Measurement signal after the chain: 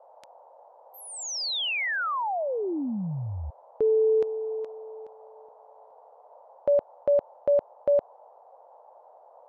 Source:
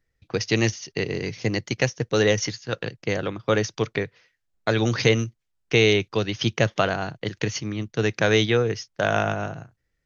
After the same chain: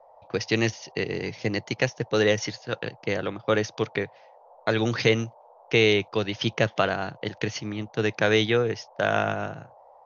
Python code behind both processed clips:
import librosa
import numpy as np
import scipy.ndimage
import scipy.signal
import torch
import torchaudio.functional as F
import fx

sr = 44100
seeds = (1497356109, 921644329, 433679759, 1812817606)

y = scipy.signal.sosfilt(scipy.signal.butter(2, 5100.0, 'lowpass', fs=sr, output='sos'), x)
y = fx.low_shelf(y, sr, hz=110.0, db=-7.5)
y = fx.dmg_noise_band(y, sr, seeds[0], low_hz=500.0, high_hz=940.0, level_db=-52.0)
y = y * 10.0 ** (-1.0 / 20.0)